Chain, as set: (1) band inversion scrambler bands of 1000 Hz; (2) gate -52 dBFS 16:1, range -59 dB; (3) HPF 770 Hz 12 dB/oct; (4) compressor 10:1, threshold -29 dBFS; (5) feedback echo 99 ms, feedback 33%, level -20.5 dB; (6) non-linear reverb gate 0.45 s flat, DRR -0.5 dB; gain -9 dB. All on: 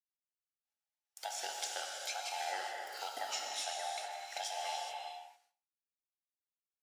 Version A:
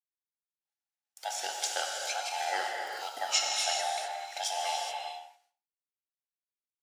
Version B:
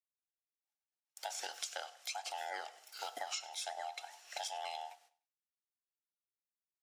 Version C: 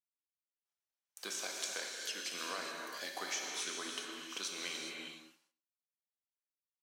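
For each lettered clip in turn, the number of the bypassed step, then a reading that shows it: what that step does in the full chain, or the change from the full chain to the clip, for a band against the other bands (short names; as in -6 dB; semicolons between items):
4, mean gain reduction 5.0 dB; 6, momentary loudness spread change +2 LU; 1, 250 Hz band +15.5 dB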